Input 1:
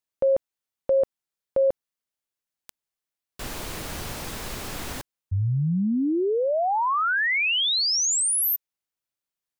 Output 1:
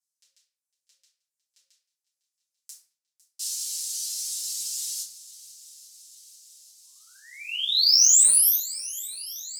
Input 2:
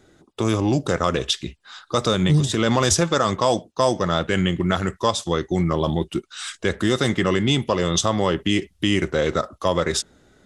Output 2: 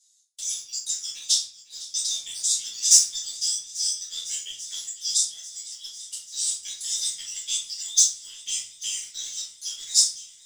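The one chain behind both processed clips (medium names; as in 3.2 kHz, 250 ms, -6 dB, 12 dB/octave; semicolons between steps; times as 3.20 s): inverse Chebyshev high-pass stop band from 970 Hz, stop band 80 dB; reverb removal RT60 0.99 s; low-pass 9.4 kHz 12 dB/octave; in parallel at 0 dB: compression, threshold -44 dBFS; on the sum: waveshaping leveller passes 1; on a send: shuffle delay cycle 840 ms, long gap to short 1.5:1, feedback 66%, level -18.5 dB; on the sum: simulated room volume 49 m³, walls mixed, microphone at 2.1 m; trim -2.5 dB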